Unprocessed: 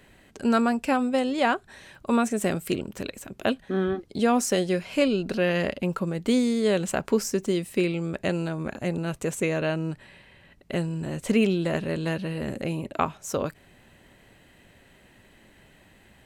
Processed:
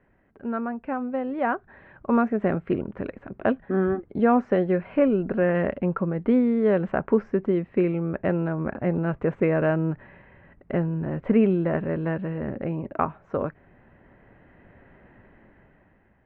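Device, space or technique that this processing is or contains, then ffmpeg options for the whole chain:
action camera in a waterproof case: -filter_complex "[0:a]asettb=1/sr,asplit=3[link_01][link_02][link_03];[link_01]atrim=end=4.994[link_04];[link_02]atrim=start=4.99:end=5.55,asetpts=PTS-STARTPTS,afade=type=in:duration=0.004:curve=qsin,afade=type=out:start_time=0.556:duration=0.004:curve=qsin,acrossover=split=3000[link_05][link_06];[link_06]acompressor=threshold=-48dB:ratio=4:attack=1:release=60[link_07];[link_05][link_07]amix=inputs=2:normalize=0[link_08];[link_03]atrim=start=5.546[link_09];[link_04][link_08]acrossfade=duration=0.004:curve1=hsin:curve2=qsin[link_10];[link_10][link_09]acrossfade=duration=0.004:curve1=qsin:curve2=hsin,lowpass=frequency=1800:width=0.5412,lowpass=frequency=1800:width=1.3066,dynaudnorm=framelen=400:gausssize=7:maxgain=16dB,volume=-7.5dB" -ar 48000 -c:a aac -b:a 96k

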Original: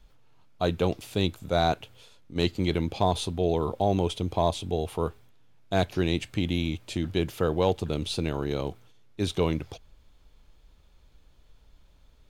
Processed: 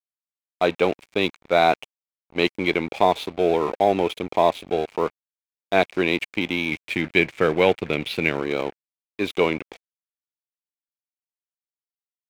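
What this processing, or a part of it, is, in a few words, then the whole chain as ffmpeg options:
pocket radio on a weak battery: -filter_complex "[0:a]asettb=1/sr,asplit=3[link_01][link_02][link_03];[link_01]atrim=end=6.714[link_04];[link_02]atrim=start=6.71:end=8.4,asetpts=PTS-STARTPTS,afade=type=in:duration=0.004:curve=qsin,afade=type=out:start_time=1.686:duration=0.004:curve=qsin,equalizer=frequency=125:width_type=o:width=1:gain=9,equalizer=frequency=1000:width_type=o:width=1:gain=-5,equalizer=frequency=2000:width_type=o:width=1:gain=9,equalizer=frequency=8000:width_type=o:width=1:gain=-4[link_05];[link_03]atrim=start=8.396[link_06];[link_04][link_05]acrossfade=duration=0.004:curve1=hsin:curve2=qsin[link_07];[link_07][link_06]acrossfade=duration=0.004:curve1=qsin:curve2=hsin,highpass=300,lowpass=3200,aeval=exprs='sgn(val(0))*max(abs(val(0))-0.00631,0)':channel_layout=same,equalizer=frequency=2300:width_type=o:width=0.34:gain=10,volume=8dB"

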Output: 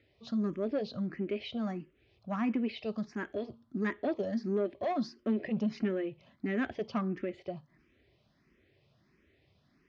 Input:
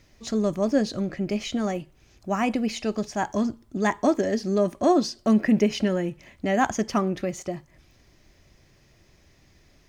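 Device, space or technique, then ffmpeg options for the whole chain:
barber-pole phaser into a guitar amplifier: -filter_complex "[0:a]asplit=2[link_01][link_02];[link_02]afreqshift=1.5[link_03];[link_01][link_03]amix=inputs=2:normalize=1,asoftclip=type=tanh:threshold=-19.5dB,highpass=84,equalizer=frequency=240:width_type=q:width=4:gain=4,equalizer=frequency=400:width_type=q:width=4:gain=4,equalizer=frequency=860:width_type=q:width=4:gain=-5,lowpass=frequency=4000:width=0.5412,lowpass=frequency=4000:width=1.3066,volume=-6dB"

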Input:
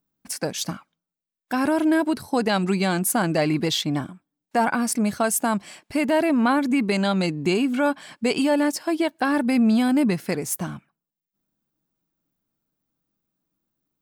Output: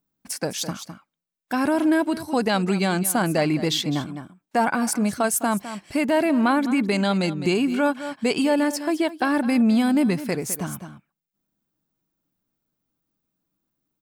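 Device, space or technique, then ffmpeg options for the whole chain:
ducked delay: -filter_complex "[0:a]asplit=3[link_01][link_02][link_03];[link_02]adelay=208,volume=-9dB[link_04];[link_03]apad=whole_len=627340[link_05];[link_04][link_05]sidechaincompress=threshold=-25dB:ratio=4:attack=7:release=339[link_06];[link_01][link_06]amix=inputs=2:normalize=0"

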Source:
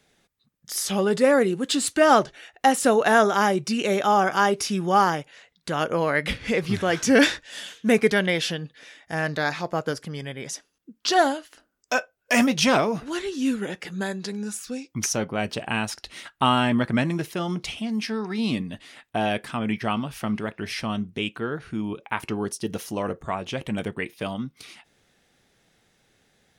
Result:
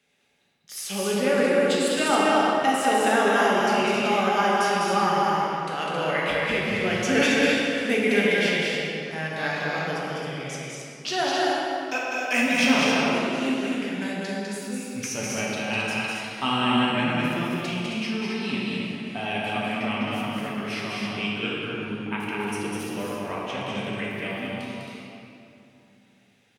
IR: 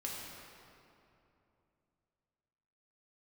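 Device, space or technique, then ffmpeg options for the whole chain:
stadium PA: -filter_complex "[0:a]highpass=frequency=130:poles=1,equalizer=frequency=2600:width_type=o:width=0.72:gain=8,aecho=1:1:201.2|268.2:0.708|0.562[link_01];[1:a]atrim=start_sample=2205[link_02];[link_01][link_02]afir=irnorm=-1:irlink=0,volume=-5dB"

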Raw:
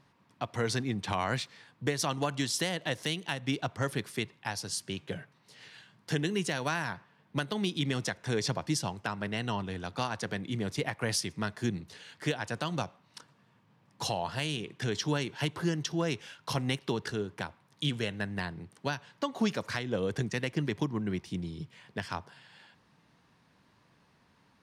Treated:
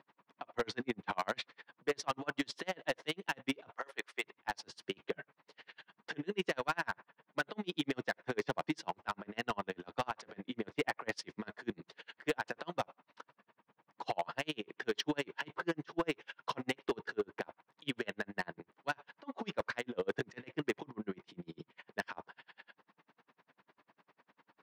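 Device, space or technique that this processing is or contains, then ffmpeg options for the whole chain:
helicopter radio: -filter_complex "[0:a]asettb=1/sr,asplit=3[link_01][link_02][link_03];[link_01]atrim=end=3.714[link_04];[link_02]atrim=start=3.71:end=4.24,asetpts=PTS-STARTPTS,afade=type=in:duration=0.004:curve=qsin,afade=type=out:start_time=0.526:duration=0.004:curve=qsin,highpass=600[link_05];[link_03]atrim=start=4.236[link_06];[link_04][link_05]acrossfade=duration=0.004:curve1=hsin:curve2=qsin[link_07];[link_07][link_06]acrossfade=duration=0.004:curve1=qsin:curve2=hsin,highpass=350,lowpass=2500,aeval=exprs='val(0)*pow(10,-39*(0.5-0.5*cos(2*PI*10*n/s))/20)':channel_layout=same,asoftclip=type=hard:threshold=-33dB,volume=7dB"

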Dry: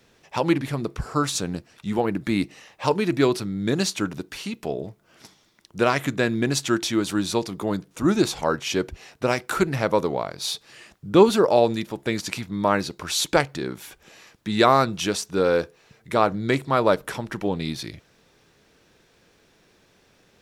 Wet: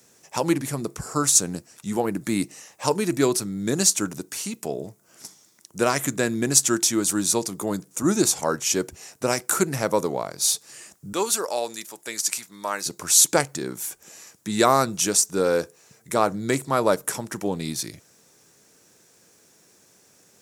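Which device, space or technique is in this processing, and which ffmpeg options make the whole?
budget condenser microphone: -filter_complex "[0:a]highpass=110,highshelf=frequency=5100:width_type=q:width=1.5:gain=12.5,asettb=1/sr,asplit=3[link_01][link_02][link_03];[link_01]atrim=end=11.134[link_04];[link_02]atrim=start=11.13:end=12.86,asetpts=PTS-STARTPTS,afade=type=in:duration=0.004:curve=qsin,afade=type=out:start_time=1.726:duration=0.004:curve=qsin,highpass=frequency=1400:poles=1[link_05];[link_03]atrim=start=12.856[link_06];[link_04][link_05]acrossfade=duration=0.004:curve1=hsin:curve2=qsin[link_07];[link_07][link_06]acrossfade=duration=0.004:curve1=qsin:curve2=hsin,volume=-1dB"

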